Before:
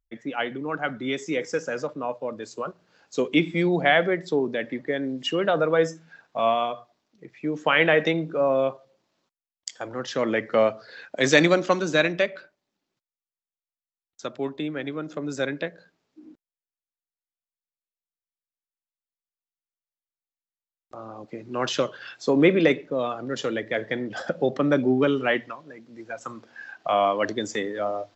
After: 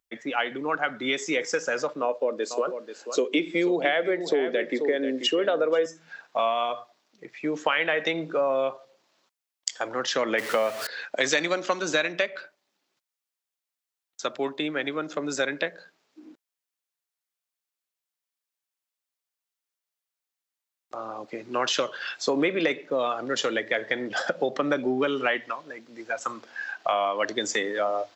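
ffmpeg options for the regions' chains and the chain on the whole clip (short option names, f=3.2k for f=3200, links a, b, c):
-filter_complex "[0:a]asettb=1/sr,asplit=3[a][b][c];[a]atrim=end=2.024[d];[b]atrim=start=2.02:end=5.86,asetpts=PTS-STARTPTS,afade=t=in:d=0.004:c=qsin,afade=t=out:st=3.836:d=0.004:c=qsin,highpass=280,lowshelf=f=630:t=q:w=1.5:g=6.5,aecho=1:1:486:0.237,atrim=end_sample=169344[e];[c]atrim=start=5.856[f];[d][e]acrossfade=d=0.004:c1=hsin:c2=qsin[g];[g][f]acrossfade=d=0.004:c1=qsin:c2=hsin,asettb=1/sr,asplit=3[h][i][j];[h]atrim=end=10.384[k];[i]atrim=start=10.38:end=10.87,asetpts=PTS-STARTPTS,afade=t=in:d=0.004:c=qsin,afade=t=out:st=0.486:d=0.004:c=qsin,aeval=exprs='val(0)+0.5*0.0251*sgn(val(0))':c=same,highpass=54,acrusher=bits=7:mix=0:aa=0.5[l];[j]atrim=start=10.866[m];[k][l]acrossfade=d=0.004:c1=hsin:c2=qsin[n];[n][m]acrossfade=d=0.004:c1=qsin:c2=hsin,highpass=f=690:p=1,acompressor=threshold=-29dB:ratio=5,volume=7.5dB"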